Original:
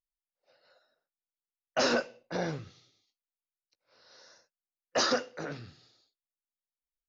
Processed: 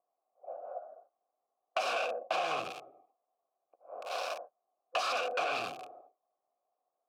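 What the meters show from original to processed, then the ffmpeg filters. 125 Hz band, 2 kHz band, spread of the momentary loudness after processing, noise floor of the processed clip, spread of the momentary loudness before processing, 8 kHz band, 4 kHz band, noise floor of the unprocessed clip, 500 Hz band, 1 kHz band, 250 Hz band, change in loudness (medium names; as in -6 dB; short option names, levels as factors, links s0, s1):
-18.0 dB, -1.0 dB, 17 LU, under -85 dBFS, 14 LU, no reading, -4.0 dB, under -85 dBFS, -2.5 dB, +3.5 dB, -16.0 dB, -4.0 dB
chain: -filter_complex "[0:a]acrossover=split=350|740[s0][s1][s2];[s2]aeval=exprs='val(0)*gte(abs(val(0)),0.002)':c=same[s3];[s0][s1][s3]amix=inputs=3:normalize=0,asplit=2[s4][s5];[s5]highpass=f=720:p=1,volume=79.4,asoftclip=type=tanh:threshold=0.2[s6];[s4][s6]amix=inputs=2:normalize=0,lowpass=f=1300:p=1,volume=0.501,asplit=2[s7][s8];[s8]aeval=exprs='0.168*sin(PI/2*3.16*val(0)/0.168)':c=same,volume=0.299[s9];[s7][s9]amix=inputs=2:normalize=0,crystalizer=i=9:c=0,asplit=3[s10][s11][s12];[s10]bandpass=f=730:t=q:w=8,volume=1[s13];[s11]bandpass=f=1090:t=q:w=8,volume=0.501[s14];[s12]bandpass=f=2440:t=q:w=8,volume=0.355[s15];[s13][s14][s15]amix=inputs=3:normalize=0,acompressor=threshold=0.0355:ratio=6"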